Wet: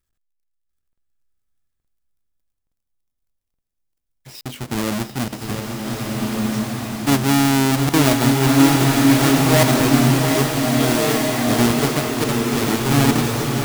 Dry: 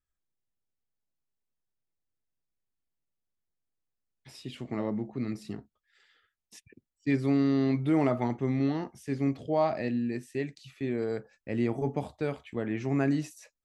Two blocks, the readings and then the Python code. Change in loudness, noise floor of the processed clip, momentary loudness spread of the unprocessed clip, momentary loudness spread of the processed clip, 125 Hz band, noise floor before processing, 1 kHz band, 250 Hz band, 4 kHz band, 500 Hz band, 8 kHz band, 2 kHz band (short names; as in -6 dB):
+13.0 dB, -77 dBFS, 12 LU, 12 LU, +15.0 dB, under -85 dBFS, +16.0 dB, +12.5 dB, +26.5 dB, +10.5 dB, n/a, +19.0 dB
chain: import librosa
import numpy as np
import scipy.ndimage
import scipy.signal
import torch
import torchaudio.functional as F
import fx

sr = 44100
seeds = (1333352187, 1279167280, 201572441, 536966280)

p1 = fx.halfwave_hold(x, sr)
p2 = fx.high_shelf(p1, sr, hz=4000.0, db=5.5)
p3 = p2 + fx.echo_single(p2, sr, ms=702, db=-8.0, dry=0)
p4 = fx.buffer_crackle(p3, sr, first_s=0.93, period_s=0.87, block=2048, kind='zero')
p5 = fx.rev_bloom(p4, sr, seeds[0], attack_ms=1610, drr_db=-1.0)
y = p5 * librosa.db_to_amplitude(5.0)